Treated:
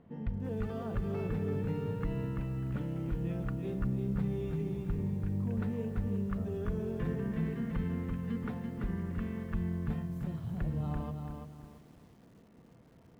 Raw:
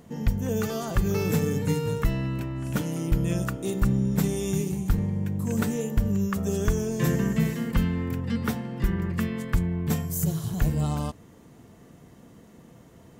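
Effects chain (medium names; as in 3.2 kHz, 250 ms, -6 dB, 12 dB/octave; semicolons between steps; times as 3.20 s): peak limiter -18 dBFS, peak gain reduction 4.5 dB; distance through air 460 m; bit-crushed delay 337 ms, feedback 35%, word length 9-bit, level -5 dB; trim -8 dB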